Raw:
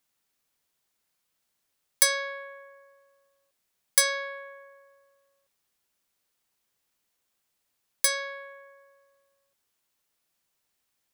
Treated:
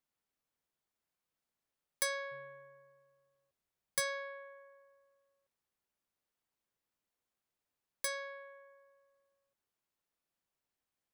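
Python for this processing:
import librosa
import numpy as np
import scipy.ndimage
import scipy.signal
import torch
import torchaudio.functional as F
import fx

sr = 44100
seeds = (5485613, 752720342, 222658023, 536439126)

y = fx.octave_divider(x, sr, octaves=2, level_db=-3.0, at=(2.31, 4.0))
y = fx.high_shelf(y, sr, hz=2100.0, db=-9.0)
y = y * 10.0 ** (-6.5 / 20.0)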